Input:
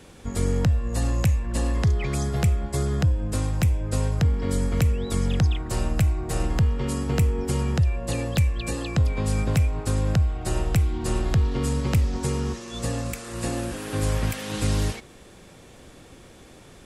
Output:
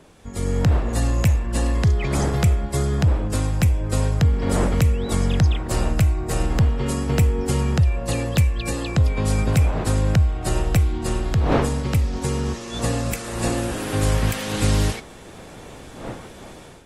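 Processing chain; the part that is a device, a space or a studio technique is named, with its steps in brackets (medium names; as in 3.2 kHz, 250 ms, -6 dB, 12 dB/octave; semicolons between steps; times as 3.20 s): smartphone video outdoors (wind noise 620 Hz -37 dBFS; level rider gain up to 11 dB; trim -5.5 dB; AAC 48 kbps 48 kHz)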